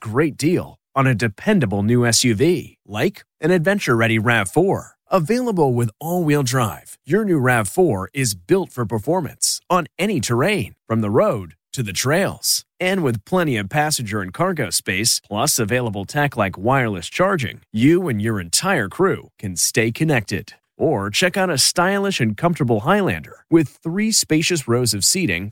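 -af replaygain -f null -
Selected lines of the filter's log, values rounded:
track_gain = -0.4 dB
track_peak = 0.557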